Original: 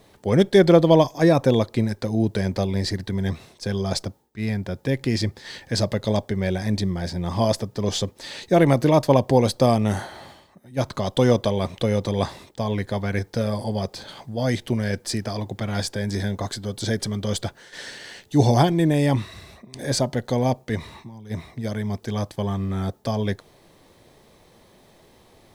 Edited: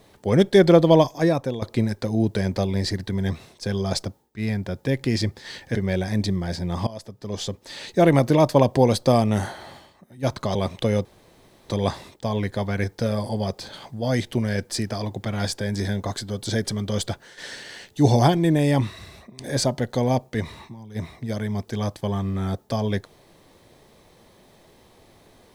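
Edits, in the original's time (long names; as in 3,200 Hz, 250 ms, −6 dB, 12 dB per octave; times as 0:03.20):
0:01.06–0:01.62: fade out, to −15 dB
0:05.75–0:06.29: remove
0:07.41–0:08.46: fade in, from −21.5 dB
0:11.09–0:11.54: remove
0:12.04: splice in room tone 0.64 s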